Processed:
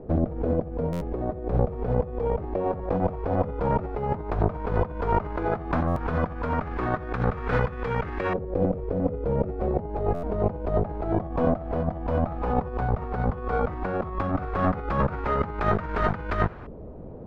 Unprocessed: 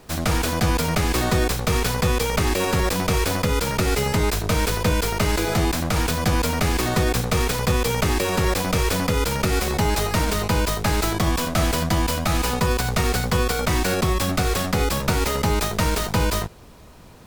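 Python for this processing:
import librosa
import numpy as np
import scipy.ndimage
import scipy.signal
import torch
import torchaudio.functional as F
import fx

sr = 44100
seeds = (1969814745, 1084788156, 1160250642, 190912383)

y = fx.high_shelf(x, sr, hz=7000.0, db=-10.5)
y = fx.notch(y, sr, hz=990.0, q=21.0)
y = fx.over_compress(y, sr, threshold_db=-26.0, ratio=-0.5)
y = fx.filter_lfo_lowpass(y, sr, shape='saw_up', hz=0.12, low_hz=490.0, high_hz=1600.0, q=1.7)
y = fx.buffer_glitch(y, sr, at_s=(0.92, 5.87, 10.14), block=512, repeats=7)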